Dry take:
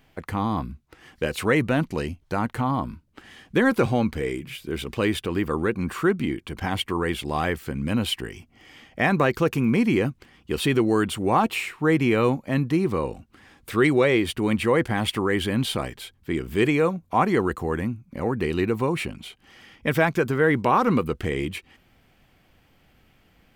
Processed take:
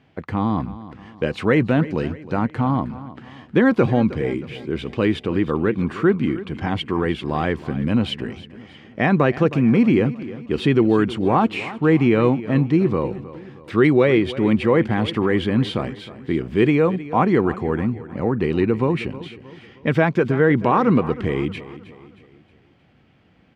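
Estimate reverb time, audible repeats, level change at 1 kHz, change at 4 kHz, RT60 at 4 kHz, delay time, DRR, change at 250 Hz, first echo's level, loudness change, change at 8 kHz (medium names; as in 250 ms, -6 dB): no reverb, 3, +1.5 dB, -1.0 dB, no reverb, 314 ms, no reverb, +5.5 dB, -16.0 dB, +4.0 dB, under -10 dB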